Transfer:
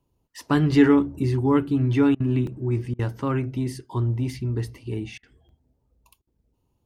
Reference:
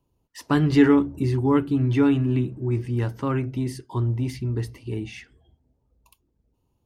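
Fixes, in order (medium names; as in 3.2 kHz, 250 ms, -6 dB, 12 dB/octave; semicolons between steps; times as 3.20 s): interpolate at 2.47/5.49 s, 2.1 ms; interpolate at 2.15/2.94/5.18/6.22 s, 50 ms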